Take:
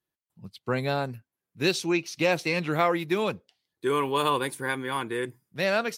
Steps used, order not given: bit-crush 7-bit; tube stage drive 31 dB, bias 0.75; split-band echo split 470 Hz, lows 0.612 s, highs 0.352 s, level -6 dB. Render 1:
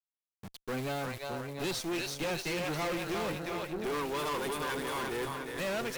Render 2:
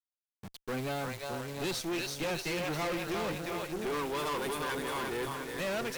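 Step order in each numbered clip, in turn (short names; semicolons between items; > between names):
bit-crush > split-band echo > tube stage; split-band echo > bit-crush > tube stage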